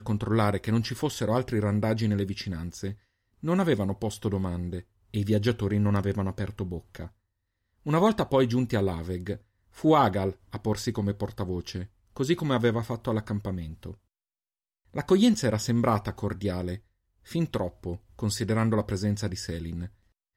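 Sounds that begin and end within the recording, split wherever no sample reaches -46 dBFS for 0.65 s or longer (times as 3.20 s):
7.86–13.95 s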